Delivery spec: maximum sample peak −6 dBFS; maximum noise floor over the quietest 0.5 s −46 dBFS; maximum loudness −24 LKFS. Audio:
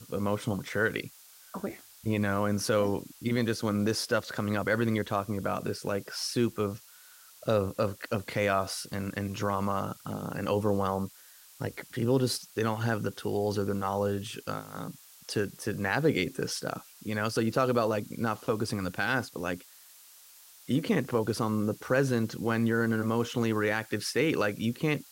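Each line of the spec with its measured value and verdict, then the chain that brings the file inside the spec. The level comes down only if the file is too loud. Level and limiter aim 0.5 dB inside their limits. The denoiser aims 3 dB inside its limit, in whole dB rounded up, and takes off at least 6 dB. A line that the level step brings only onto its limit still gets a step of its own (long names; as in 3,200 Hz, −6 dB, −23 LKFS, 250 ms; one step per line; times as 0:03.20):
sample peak −12.0 dBFS: in spec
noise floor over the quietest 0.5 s −54 dBFS: in spec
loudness −30.5 LKFS: in spec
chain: no processing needed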